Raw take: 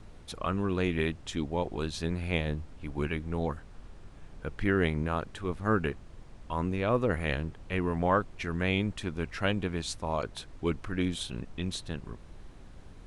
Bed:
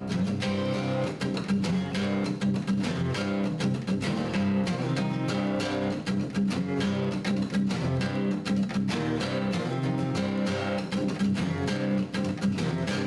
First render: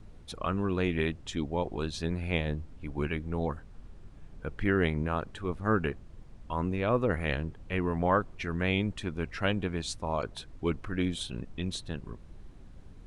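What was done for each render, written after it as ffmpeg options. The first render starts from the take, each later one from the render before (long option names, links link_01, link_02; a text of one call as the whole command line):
ffmpeg -i in.wav -af "afftdn=noise_reduction=6:noise_floor=-50" out.wav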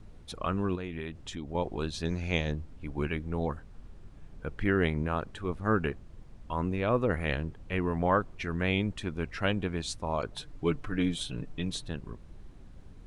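ffmpeg -i in.wav -filter_complex "[0:a]asettb=1/sr,asplit=3[link_01][link_02][link_03];[link_01]atrim=end=0.754[link_04];[link_02]atrim=start=0.75:end=1.55,asetpts=PTS-STARTPTS,afade=type=in:duration=0.004:curve=qsin,afade=type=out:start_time=0.796:duration=0.004:curve=qsin,acompressor=threshold=-35dB:ratio=3:attack=3.2:release=140:knee=1:detection=peak[link_05];[link_03]atrim=start=1.546[link_06];[link_04][link_05]acrossfade=duration=0.004:curve1=hsin:curve2=qsin[link_07];[link_07][link_06]acrossfade=duration=0.004:curve1=qsin:curve2=hsin,asettb=1/sr,asplit=3[link_08][link_09][link_10];[link_08]atrim=end=2.054[link_11];[link_09]atrim=start=2.05:end=2.52,asetpts=PTS-STARTPTS,afade=type=in:duration=0.004:curve=qsin,afade=type=out:start_time=0.466:duration=0.004:curve=qsin,lowpass=frequency=6200:width_type=q:width=12[link_12];[link_10]atrim=start=2.516[link_13];[link_11][link_12]acrossfade=duration=0.004:curve1=hsin:curve2=qsin[link_14];[link_14][link_13]acrossfade=duration=0.004:curve1=qsin:curve2=hsin,asettb=1/sr,asplit=3[link_15][link_16][link_17];[link_15]atrim=end=10.324[link_18];[link_16]atrim=start=10.32:end=11.88,asetpts=PTS-STARTPTS,afade=type=in:duration=0.004:curve=qsin,afade=type=out:start_time=1.556:duration=0.004:curve=qsin,aecho=1:1:6.8:0.51,atrim=end_sample=68796[link_19];[link_17]atrim=start=11.876[link_20];[link_18][link_19]acrossfade=duration=0.004:curve1=hsin:curve2=qsin[link_21];[link_21][link_20]acrossfade=duration=0.004:curve1=qsin:curve2=hsin" out.wav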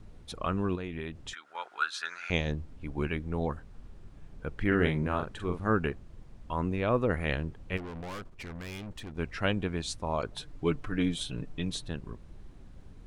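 ffmpeg -i in.wav -filter_complex "[0:a]asettb=1/sr,asplit=3[link_01][link_02][link_03];[link_01]atrim=end=1.334[link_04];[link_02]atrim=start=1.33:end=2.3,asetpts=PTS-STARTPTS,afade=type=in:duration=0.004:curve=qsin,afade=type=out:start_time=0.966:duration=0.004:curve=qsin,highpass=frequency=1400:width_type=q:width=12[link_05];[link_03]atrim=start=2.296[link_06];[link_04][link_05]acrossfade=duration=0.004:curve1=hsin:curve2=qsin[link_07];[link_07][link_06]acrossfade=duration=0.004:curve1=qsin:curve2=hsin,asettb=1/sr,asplit=3[link_08][link_09][link_10];[link_08]atrim=end=4.674[link_11];[link_09]atrim=start=4.67:end=5.7,asetpts=PTS-STARTPTS,afade=type=in:duration=0.004:curve=qsin,afade=type=out:start_time=1.026:duration=0.004:curve=qsin,asplit=2[link_12][link_13];[link_13]adelay=45,volume=-6.5dB[link_14];[link_12][link_14]amix=inputs=2:normalize=0,atrim=end_sample=45423[link_15];[link_10]atrim=start=5.696[link_16];[link_11][link_15]acrossfade=duration=0.004:curve1=hsin:curve2=qsin[link_17];[link_17][link_16]acrossfade=duration=0.004:curve1=qsin:curve2=hsin,asplit=3[link_18][link_19][link_20];[link_18]afade=type=out:start_time=7.76:duration=0.02[link_21];[link_19]aeval=exprs='(tanh(79.4*val(0)+0.55)-tanh(0.55))/79.4':channel_layout=same,afade=type=in:start_time=7.76:duration=0.02,afade=type=out:start_time=9.17:duration=0.02[link_22];[link_20]afade=type=in:start_time=9.17:duration=0.02[link_23];[link_21][link_22][link_23]amix=inputs=3:normalize=0" out.wav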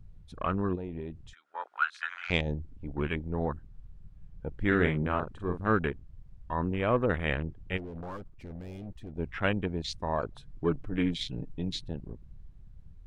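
ffmpeg -i in.wav -af "afwtdn=0.0112,equalizer=frequency=2800:width=0.32:gain=2.5" out.wav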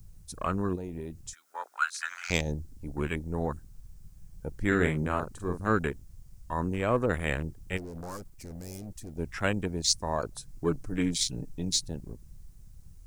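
ffmpeg -i in.wav -filter_complex "[0:a]acrossover=split=550[link_01][link_02];[link_02]aexciter=amount=13.2:drive=3.8:freq=4900[link_03];[link_01][link_03]amix=inputs=2:normalize=0,acrusher=bits=11:mix=0:aa=0.000001" out.wav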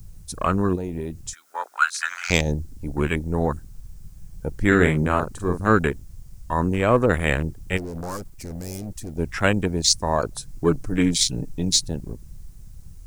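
ffmpeg -i in.wav -af "volume=8.5dB,alimiter=limit=-2dB:level=0:latency=1" out.wav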